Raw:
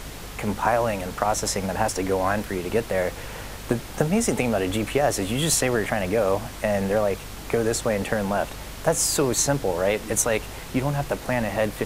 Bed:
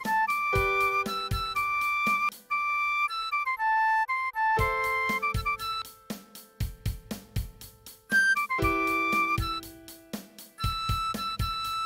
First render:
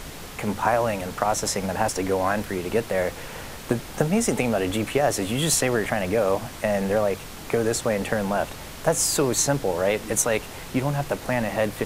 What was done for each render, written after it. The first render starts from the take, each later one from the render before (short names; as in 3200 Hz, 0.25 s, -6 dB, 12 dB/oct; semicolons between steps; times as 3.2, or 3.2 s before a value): de-hum 50 Hz, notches 2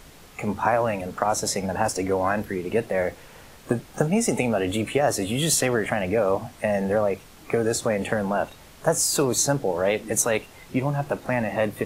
noise print and reduce 10 dB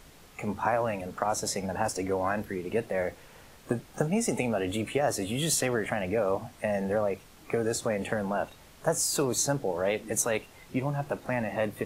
gain -5.5 dB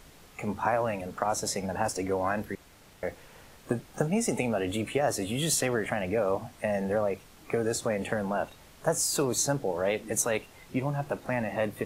2.55–3.03 room tone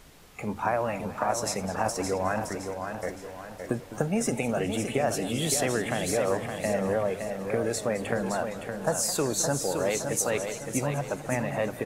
feedback echo 0.566 s, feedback 42%, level -6.5 dB; warbling echo 0.209 s, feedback 51%, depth 161 cents, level -14.5 dB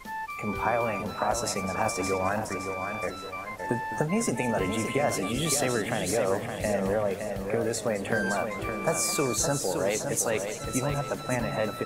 add bed -9.5 dB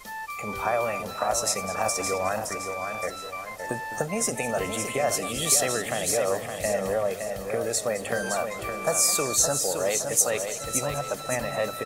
tone controls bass -6 dB, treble +7 dB; comb 1.6 ms, depth 32%